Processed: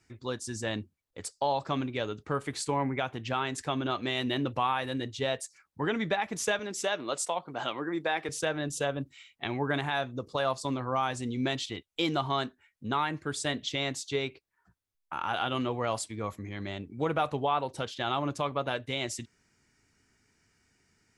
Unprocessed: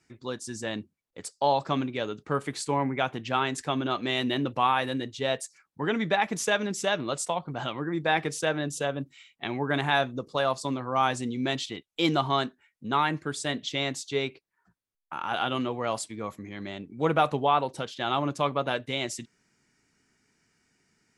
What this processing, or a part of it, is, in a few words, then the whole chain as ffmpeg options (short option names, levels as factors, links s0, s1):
car stereo with a boomy subwoofer: -filter_complex "[0:a]asettb=1/sr,asplit=3[s0][s1][s2];[s0]atrim=end=6.594[s3];[s1]atrim=start=6.59:end=8.29,asetpts=PTS-STARTPTS,afade=t=in:d=0.004:c=qsin,afade=t=out:st=1.696:d=0.004:c=qsin,highpass=260[s4];[s2]atrim=start=8.286[s5];[s3][s4]acrossfade=d=0.004:c1=hsin:c2=qsin[s6];[s6][s5]acrossfade=d=0.004:c1=qsin:c2=hsin,lowshelf=f=120:t=q:w=1.5:g=6,alimiter=limit=0.133:level=0:latency=1:release=320"